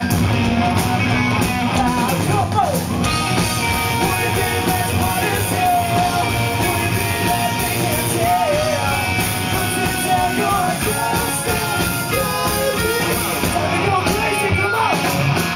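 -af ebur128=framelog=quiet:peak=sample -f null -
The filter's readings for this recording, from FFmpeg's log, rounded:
Integrated loudness:
  I:         -17.5 LUFS
  Threshold: -27.5 LUFS
Loudness range:
  LRA:         0.7 LU
  Threshold: -37.6 LUFS
  LRA low:   -18.0 LUFS
  LRA high:  -17.3 LUFS
Sample peak:
  Peak:       -3.5 dBFS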